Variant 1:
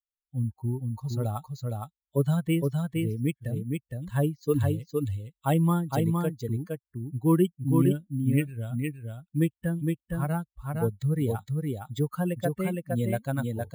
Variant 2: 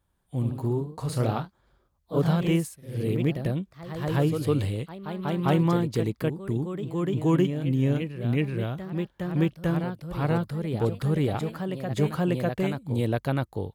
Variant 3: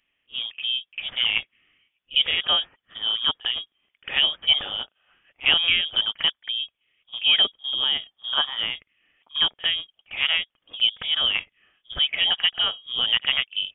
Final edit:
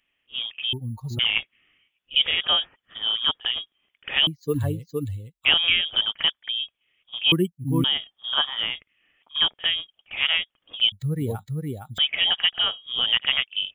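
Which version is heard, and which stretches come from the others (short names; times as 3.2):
3
0.73–1.19 from 1
4.27–5.45 from 1
7.32–7.84 from 1
10.92–11.98 from 1
not used: 2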